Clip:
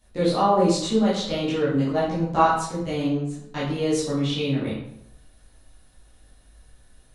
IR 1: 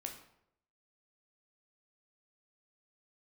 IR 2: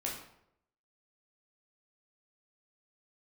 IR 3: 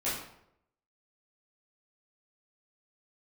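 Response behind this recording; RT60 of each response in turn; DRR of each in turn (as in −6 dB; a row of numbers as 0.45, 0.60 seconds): 3; 0.75, 0.75, 0.75 seconds; 2.5, −3.5, −11.0 decibels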